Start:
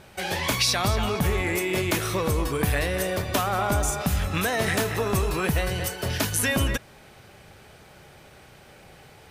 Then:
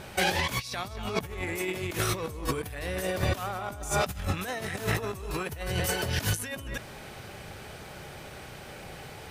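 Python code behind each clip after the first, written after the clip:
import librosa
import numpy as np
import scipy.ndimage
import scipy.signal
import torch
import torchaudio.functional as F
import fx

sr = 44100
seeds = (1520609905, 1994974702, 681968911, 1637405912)

y = fx.over_compress(x, sr, threshold_db=-30.0, ratio=-0.5)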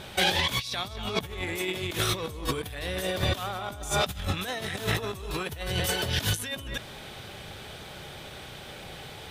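y = fx.peak_eq(x, sr, hz=3500.0, db=10.0, octaves=0.43)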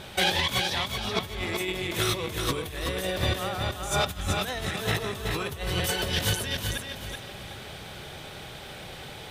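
y = fx.echo_feedback(x, sr, ms=378, feedback_pct=31, wet_db=-5.0)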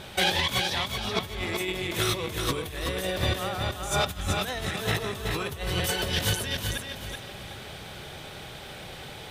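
y = x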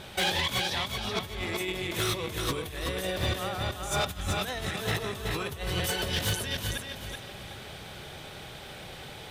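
y = np.clip(x, -10.0 ** (-20.0 / 20.0), 10.0 ** (-20.0 / 20.0))
y = F.gain(torch.from_numpy(y), -2.0).numpy()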